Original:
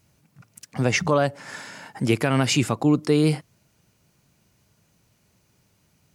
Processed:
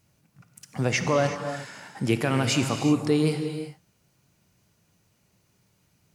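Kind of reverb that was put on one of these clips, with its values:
reverb whose tail is shaped and stops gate 400 ms flat, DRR 6 dB
level −3.5 dB

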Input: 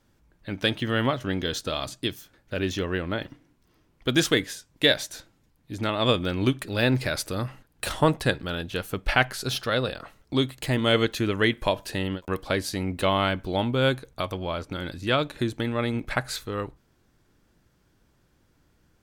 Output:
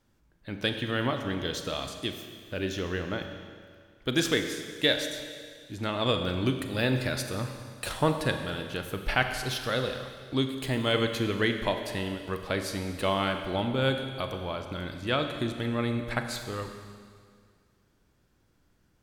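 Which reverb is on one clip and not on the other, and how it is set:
four-comb reverb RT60 2 s, combs from 30 ms, DRR 6 dB
level −4.5 dB

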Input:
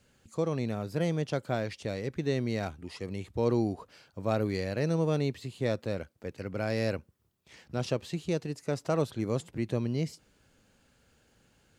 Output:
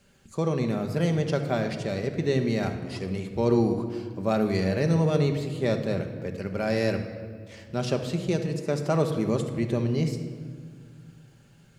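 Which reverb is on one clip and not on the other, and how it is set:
rectangular room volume 2,600 cubic metres, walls mixed, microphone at 1.2 metres
level +3.5 dB

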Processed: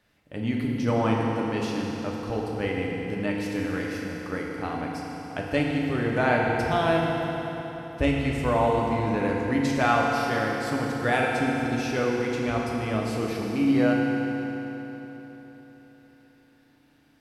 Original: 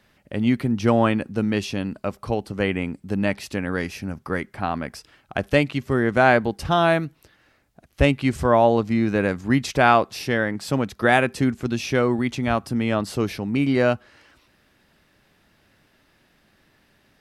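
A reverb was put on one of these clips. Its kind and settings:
feedback delay network reverb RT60 4 s, high-frequency decay 0.8×, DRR −2.5 dB
level −8.5 dB

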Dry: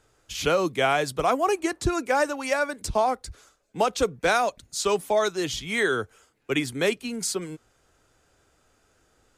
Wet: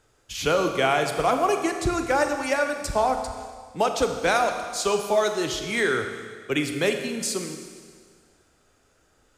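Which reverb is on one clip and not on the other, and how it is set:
four-comb reverb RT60 1.8 s, combs from 27 ms, DRR 5.5 dB

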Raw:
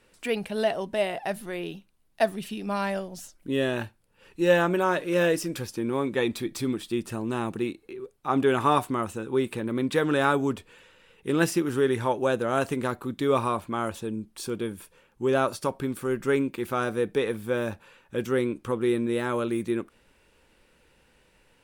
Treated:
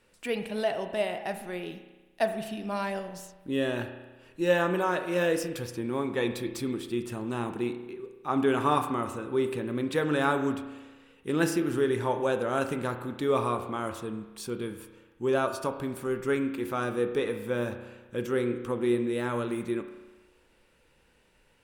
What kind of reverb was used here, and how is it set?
spring reverb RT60 1.2 s, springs 33 ms, chirp 75 ms, DRR 7.5 dB
level −3.5 dB

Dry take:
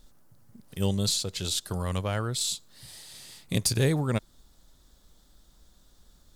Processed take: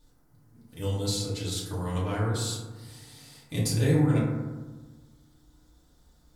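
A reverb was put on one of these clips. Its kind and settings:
feedback delay network reverb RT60 1.3 s, low-frequency decay 1.3×, high-frequency decay 0.3×, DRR −8.5 dB
level −10 dB

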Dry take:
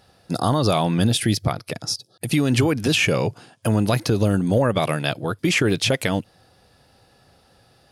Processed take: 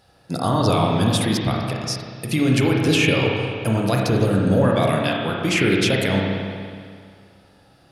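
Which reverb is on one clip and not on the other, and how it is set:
spring reverb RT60 2.1 s, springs 31/45 ms, chirp 55 ms, DRR −1.5 dB
level −2 dB

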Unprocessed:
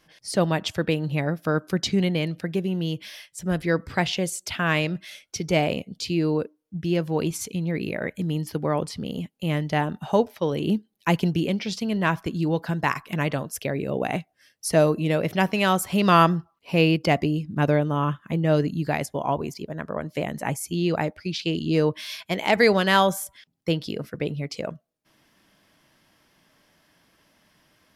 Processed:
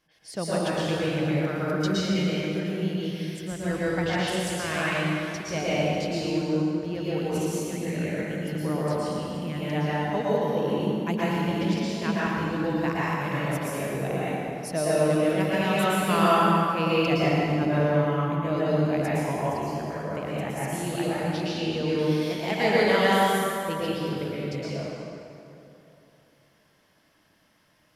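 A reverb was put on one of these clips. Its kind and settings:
dense smooth reverb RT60 2.9 s, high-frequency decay 0.65×, pre-delay 100 ms, DRR −8.5 dB
level −10.5 dB

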